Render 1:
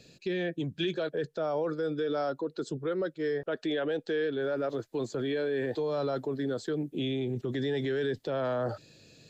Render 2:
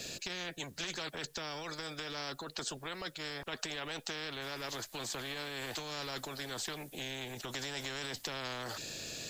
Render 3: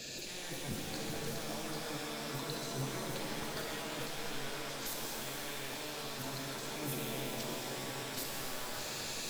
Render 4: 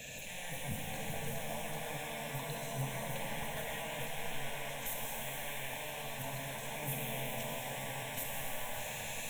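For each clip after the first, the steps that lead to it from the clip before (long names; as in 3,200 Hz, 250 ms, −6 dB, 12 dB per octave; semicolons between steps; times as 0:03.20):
high-shelf EQ 5,700 Hz +8.5 dB; every bin compressed towards the loudest bin 4 to 1; level +2.5 dB
compressor whose output falls as the input rises −53 dBFS, ratio −1; reverb with rising layers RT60 3.8 s, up +7 semitones, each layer −2 dB, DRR −2 dB; level +5 dB
phaser with its sweep stopped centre 1,300 Hz, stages 6; level +3.5 dB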